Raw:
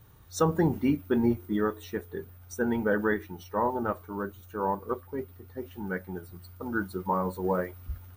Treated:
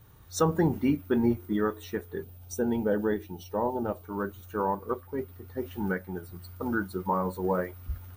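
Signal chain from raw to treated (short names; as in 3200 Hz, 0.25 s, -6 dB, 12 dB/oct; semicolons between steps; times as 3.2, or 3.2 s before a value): recorder AGC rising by 5.9 dB/s; 2.23–4.05 band shelf 1500 Hz -9 dB 1.3 oct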